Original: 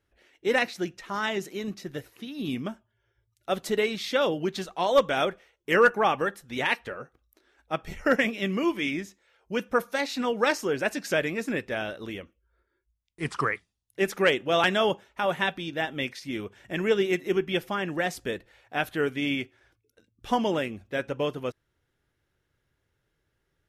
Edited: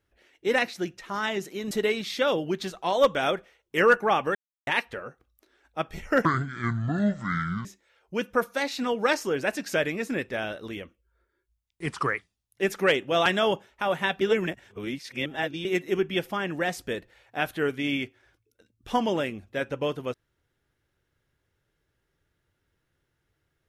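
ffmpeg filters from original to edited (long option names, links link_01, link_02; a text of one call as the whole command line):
ffmpeg -i in.wav -filter_complex "[0:a]asplit=8[link_01][link_02][link_03][link_04][link_05][link_06][link_07][link_08];[link_01]atrim=end=1.712[link_09];[link_02]atrim=start=3.648:end=6.29,asetpts=PTS-STARTPTS,afade=type=out:start_time=2.638:duration=0.004:curve=hsin[link_10];[link_03]atrim=start=6.29:end=6.61,asetpts=PTS-STARTPTS,volume=0[link_11];[link_04]atrim=start=6.61:end=8.194,asetpts=PTS-STARTPTS,afade=type=in:duration=0.004:curve=hsin[link_12];[link_05]atrim=start=8.19:end=9.03,asetpts=PTS-STARTPTS,asetrate=26460,aresample=44100[link_13];[link_06]atrim=start=9.026:end=15.592[link_14];[link_07]atrim=start=15.588:end=17.032,asetpts=PTS-STARTPTS,areverse[link_15];[link_08]atrim=start=17.028[link_16];[link_10][link_11][link_12]concat=n=3:v=0:a=1[link_17];[link_09][link_17]acrossfade=duration=0.004:curve1=hsin:curve2=hsin[link_18];[link_18][link_13]acrossfade=duration=0.004:curve1=hsin:curve2=hsin[link_19];[link_19][link_14]acrossfade=duration=0.004:curve1=hsin:curve2=hsin[link_20];[link_20][link_15]acrossfade=duration=0.004:curve1=hsin:curve2=hsin[link_21];[link_21][link_16]acrossfade=duration=0.004:curve1=hsin:curve2=hsin" out.wav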